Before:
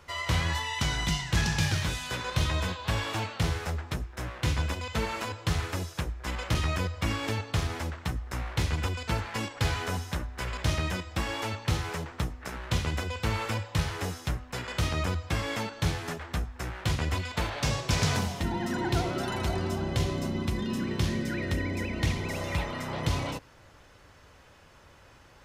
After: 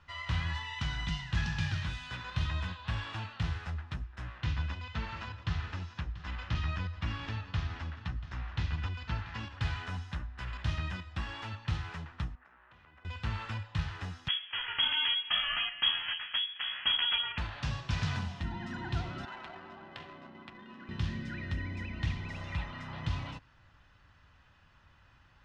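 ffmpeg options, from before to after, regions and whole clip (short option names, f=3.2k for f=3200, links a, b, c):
-filter_complex "[0:a]asettb=1/sr,asplit=3[a][b][c];[a]atrim=end=4.414[d];[b]atrim=start=4.41:end=9.61,asetpts=PTS-STARTPTS,afade=t=in:d=0.004:c=qsin,afade=t=out:st=5.196:d=0.004:c=qsin,lowpass=f=6.7k:w=0.5412,lowpass=f=6.7k:w=1.3066,aecho=1:1:687:0.178,atrim=end_sample=229320[e];[c]atrim=start=9.606[f];[d][e]acrossfade=d=0.004:c1=hsin:c2=qsin[g];[g][f]acrossfade=d=0.004:c1=qsin:c2=hsin,asettb=1/sr,asplit=3[h][i][j];[h]atrim=end=12.354[k];[i]atrim=start=12.35:end=13.05,asetpts=PTS-STARTPTS,afade=t=in:d=0.004:c=qsin,afade=t=out:st=0.696:d=0.004:c=qsin,acrossover=split=300 2300:gain=0.126 1 0.126[l][m][n];[l][m][n]amix=inputs=3:normalize=0,acompressor=threshold=-50dB:ratio=4:attack=3.2:release=140:knee=1:detection=peak[o];[j]atrim=start=13.046[p];[k][o]acrossfade=d=0.004:c1=hsin:c2=qsin[q];[q][p]acrossfade=d=0.004:c1=qsin:c2=hsin,asettb=1/sr,asplit=3[r][s][t];[r]atrim=end=14.284[u];[s]atrim=start=14.28:end=17.38,asetpts=PTS-STARTPTS,afade=t=in:d=0.004:c=qsin,afade=t=out:st=3.096:d=0.004:c=qsin,highpass=57,acontrast=82,lowpass=f=2.9k:t=q:w=0.5098,lowpass=f=2.9k:t=q:w=0.6013,lowpass=f=2.9k:t=q:w=0.9,lowpass=f=2.9k:t=q:w=2.563,afreqshift=-3400[v];[t]atrim=start=17.376[w];[u][v]acrossfade=d=0.004:c1=hsin:c2=qsin[x];[x][w]acrossfade=d=0.004:c1=qsin:c2=hsin,asettb=1/sr,asplit=3[y][z][aa];[y]atrim=end=19.254[ab];[z]atrim=start=19.25:end=20.89,asetpts=PTS-STARTPTS,afade=t=in:d=0.004:c=qsin,afade=t=out:st=1.636:d=0.004:c=qsin,highpass=430,adynamicsmooth=sensitivity=5:basefreq=1.2k[ac];[aa]atrim=start=20.886[ad];[ab][ac]acrossfade=d=0.004:c1=hsin:c2=qsin[ae];[ae][ad]acrossfade=d=0.004:c1=qsin:c2=hsin,lowpass=3.1k,equalizer=f=460:w=0.92:g=-15,bandreject=f=2.2k:w=11,volume=-3.5dB"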